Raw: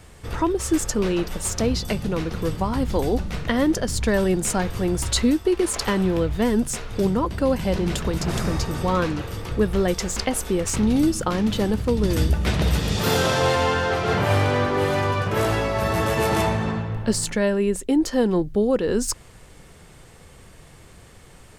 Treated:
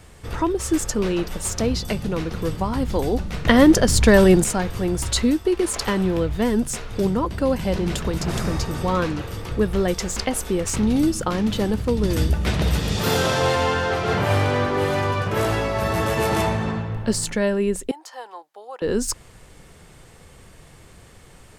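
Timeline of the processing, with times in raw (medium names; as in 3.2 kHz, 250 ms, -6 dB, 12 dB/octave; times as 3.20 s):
3.45–4.44 s: gain +7.5 dB
17.91–18.82 s: ladder high-pass 740 Hz, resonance 55%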